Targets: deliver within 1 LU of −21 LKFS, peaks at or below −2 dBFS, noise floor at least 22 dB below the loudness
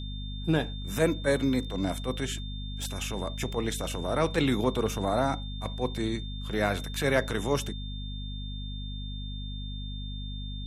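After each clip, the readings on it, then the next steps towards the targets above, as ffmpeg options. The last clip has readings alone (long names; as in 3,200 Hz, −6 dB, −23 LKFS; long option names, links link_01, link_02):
mains hum 50 Hz; hum harmonics up to 250 Hz; level of the hum −34 dBFS; interfering tone 3,600 Hz; level of the tone −43 dBFS; integrated loudness −31.0 LKFS; sample peak −11.0 dBFS; target loudness −21.0 LKFS
→ -af "bandreject=frequency=50:width_type=h:width=6,bandreject=frequency=100:width_type=h:width=6,bandreject=frequency=150:width_type=h:width=6,bandreject=frequency=200:width_type=h:width=6,bandreject=frequency=250:width_type=h:width=6"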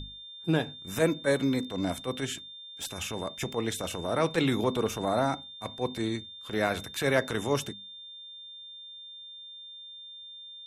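mains hum none found; interfering tone 3,600 Hz; level of the tone −43 dBFS
→ -af "bandreject=frequency=3600:width=30"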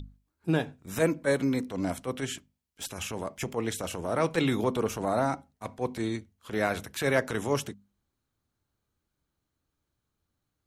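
interfering tone none found; integrated loudness −30.5 LKFS; sample peak −12.0 dBFS; target loudness −21.0 LKFS
→ -af "volume=9.5dB"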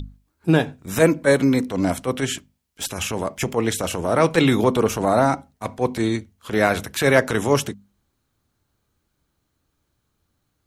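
integrated loudness −21.0 LKFS; sample peak −2.5 dBFS; background noise floor −73 dBFS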